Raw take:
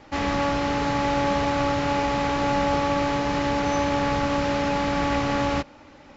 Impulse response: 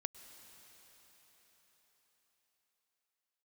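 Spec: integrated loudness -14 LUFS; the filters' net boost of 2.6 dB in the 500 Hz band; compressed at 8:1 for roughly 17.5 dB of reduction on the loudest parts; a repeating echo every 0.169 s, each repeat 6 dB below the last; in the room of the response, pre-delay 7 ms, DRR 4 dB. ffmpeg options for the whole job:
-filter_complex "[0:a]equalizer=f=500:t=o:g=3,acompressor=threshold=-37dB:ratio=8,aecho=1:1:169|338|507|676|845|1014:0.501|0.251|0.125|0.0626|0.0313|0.0157,asplit=2[a][b];[1:a]atrim=start_sample=2205,adelay=7[c];[b][c]afir=irnorm=-1:irlink=0,volume=-1.5dB[d];[a][d]amix=inputs=2:normalize=0,volume=20.5dB"

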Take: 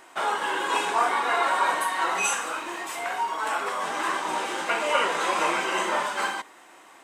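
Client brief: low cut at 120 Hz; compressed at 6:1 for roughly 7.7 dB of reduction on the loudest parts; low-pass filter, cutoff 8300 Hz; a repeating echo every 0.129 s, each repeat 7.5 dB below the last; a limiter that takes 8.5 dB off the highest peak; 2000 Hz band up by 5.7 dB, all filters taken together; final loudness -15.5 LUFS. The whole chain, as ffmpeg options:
-af "highpass=120,lowpass=8.3k,equalizer=f=2k:t=o:g=7.5,acompressor=threshold=-24dB:ratio=6,alimiter=limit=-23dB:level=0:latency=1,aecho=1:1:129|258|387|516|645:0.422|0.177|0.0744|0.0312|0.0131,volume=14.5dB"

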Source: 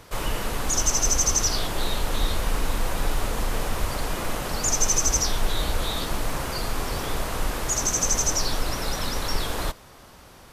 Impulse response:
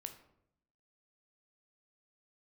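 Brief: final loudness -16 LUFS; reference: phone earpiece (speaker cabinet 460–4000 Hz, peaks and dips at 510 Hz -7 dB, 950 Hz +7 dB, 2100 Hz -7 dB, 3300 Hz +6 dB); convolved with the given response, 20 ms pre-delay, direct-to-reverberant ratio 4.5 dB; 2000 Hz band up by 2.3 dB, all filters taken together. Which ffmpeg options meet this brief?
-filter_complex "[0:a]equalizer=f=2k:t=o:g=5.5,asplit=2[a][b];[1:a]atrim=start_sample=2205,adelay=20[c];[b][c]afir=irnorm=-1:irlink=0,volume=-0.5dB[d];[a][d]amix=inputs=2:normalize=0,highpass=460,equalizer=f=510:t=q:w=4:g=-7,equalizer=f=950:t=q:w=4:g=7,equalizer=f=2.1k:t=q:w=4:g=-7,equalizer=f=3.3k:t=q:w=4:g=6,lowpass=f=4k:w=0.5412,lowpass=f=4k:w=1.3066,volume=12dB"

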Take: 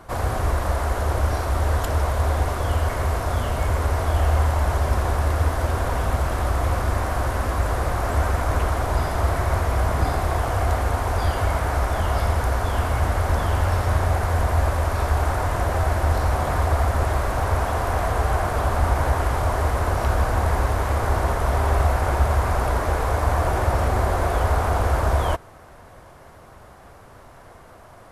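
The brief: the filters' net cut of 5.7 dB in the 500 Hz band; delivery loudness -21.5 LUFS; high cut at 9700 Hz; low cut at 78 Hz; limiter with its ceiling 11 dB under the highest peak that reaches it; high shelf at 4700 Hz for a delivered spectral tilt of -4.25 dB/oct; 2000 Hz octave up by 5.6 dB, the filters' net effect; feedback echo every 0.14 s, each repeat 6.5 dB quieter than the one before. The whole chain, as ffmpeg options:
-af "highpass=78,lowpass=9.7k,equalizer=f=500:t=o:g=-8.5,equalizer=f=2k:t=o:g=7,highshelf=f=4.7k:g=6.5,alimiter=limit=-20.5dB:level=0:latency=1,aecho=1:1:140|280|420|560|700|840:0.473|0.222|0.105|0.0491|0.0231|0.0109,volume=6.5dB"

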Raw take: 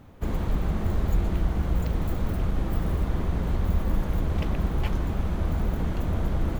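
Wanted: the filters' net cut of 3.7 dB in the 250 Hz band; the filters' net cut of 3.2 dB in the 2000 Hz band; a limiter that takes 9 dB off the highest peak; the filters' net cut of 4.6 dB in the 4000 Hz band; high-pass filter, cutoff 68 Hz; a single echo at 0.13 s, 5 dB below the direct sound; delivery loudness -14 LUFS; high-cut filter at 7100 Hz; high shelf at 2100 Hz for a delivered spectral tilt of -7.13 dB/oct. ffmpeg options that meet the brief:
-af "highpass=68,lowpass=7.1k,equalizer=f=250:t=o:g=-5.5,equalizer=f=2k:t=o:g=-4.5,highshelf=f=2.1k:g=4,equalizer=f=4k:t=o:g=-8,alimiter=level_in=2dB:limit=-24dB:level=0:latency=1,volume=-2dB,aecho=1:1:130:0.562,volume=20dB"

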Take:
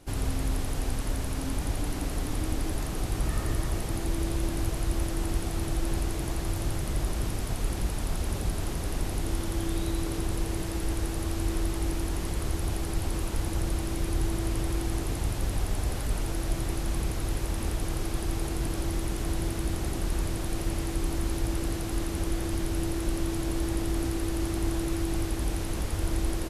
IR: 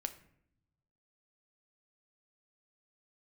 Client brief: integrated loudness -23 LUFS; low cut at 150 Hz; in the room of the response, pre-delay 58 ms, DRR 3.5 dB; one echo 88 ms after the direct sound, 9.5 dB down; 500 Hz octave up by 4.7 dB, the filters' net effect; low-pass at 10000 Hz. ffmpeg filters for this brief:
-filter_complex "[0:a]highpass=150,lowpass=10k,equalizer=f=500:t=o:g=7,aecho=1:1:88:0.335,asplit=2[a][b];[1:a]atrim=start_sample=2205,adelay=58[c];[b][c]afir=irnorm=-1:irlink=0,volume=-2.5dB[d];[a][d]amix=inputs=2:normalize=0,volume=6.5dB"

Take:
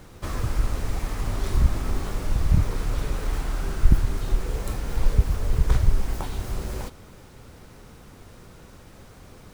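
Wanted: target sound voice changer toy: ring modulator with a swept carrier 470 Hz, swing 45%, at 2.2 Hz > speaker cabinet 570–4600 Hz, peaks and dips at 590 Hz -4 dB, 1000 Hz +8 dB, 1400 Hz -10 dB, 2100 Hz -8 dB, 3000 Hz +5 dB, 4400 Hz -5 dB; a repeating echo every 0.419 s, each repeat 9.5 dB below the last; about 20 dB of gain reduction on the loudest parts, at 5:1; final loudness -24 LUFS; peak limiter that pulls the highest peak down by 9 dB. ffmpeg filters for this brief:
-af "acompressor=threshold=-34dB:ratio=5,alimiter=level_in=8.5dB:limit=-24dB:level=0:latency=1,volume=-8.5dB,aecho=1:1:419|838|1257|1676:0.335|0.111|0.0365|0.012,aeval=exprs='val(0)*sin(2*PI*470*n/s+470*0.45/2.2*sin(2*PI*2.2*n/s))':c=same,highpass=570,equalizer=f=590:t=q:w=4:g=-4,equalizer=f=1k:t=q:w=4:g=8,equalizer=f=1.4k:t=q:w=4:g=-10,equalizer=f=2.1k:t=q:w=4:g=-8,equalizer=f=3k:t=q:w=4:g=5,equalizer=f=4.4k:t=q:w=4:g=-5,lowpass=f=4.6k:w=0.5412,lowpass=f=4.6k:w=1.3066,volume=25dB"

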